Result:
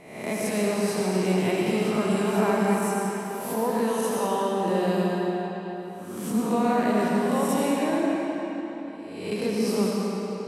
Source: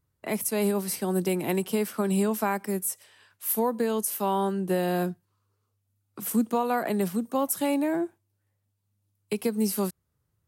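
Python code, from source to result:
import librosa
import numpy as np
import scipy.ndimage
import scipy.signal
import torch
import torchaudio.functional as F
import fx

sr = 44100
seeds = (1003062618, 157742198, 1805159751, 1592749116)

y = fx.spec_swells(x, sr, rise_s=0.81)
y = scipy.signal.sosfilt(scipy.signal.butter(2, 6900.0, 'lowpass', fs=sr, output='sos'), y)
y = fx.rev_freeverb(y, sr, rt60_s=4.0, hf_ratio=0.8, predelay_ms=45, drr_db=-3.5)
y = y * librosa.db_to_amplitude(-3.0)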